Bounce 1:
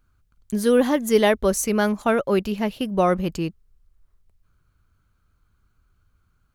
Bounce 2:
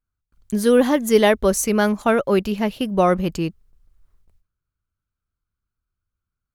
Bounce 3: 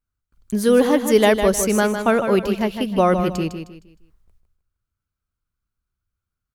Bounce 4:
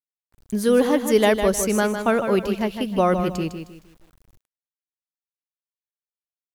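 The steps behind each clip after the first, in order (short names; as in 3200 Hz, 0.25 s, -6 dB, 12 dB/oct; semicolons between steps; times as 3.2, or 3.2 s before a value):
gate with hold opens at -51 dBFS; gain +2.5 dB
feedback echo 0.155 s, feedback 32%, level -8 dB
bit-crush 9-bit; gain -2.5 dB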